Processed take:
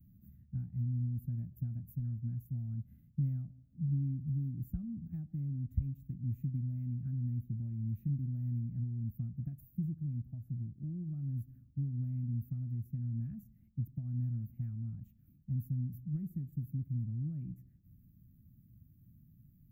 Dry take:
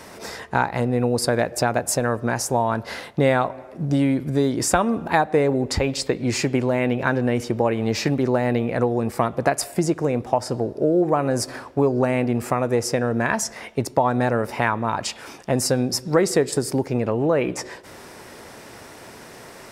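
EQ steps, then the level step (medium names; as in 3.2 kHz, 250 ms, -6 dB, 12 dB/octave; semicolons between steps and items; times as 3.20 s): band-stop 380 Hz, Q 12; dynamic bell 940 Hz, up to +5 dB, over -32 dBFS, Q 1.1; inverse Chebyshev band-stop 430–9400 Hz, stop band 50 dB; -6.5 dB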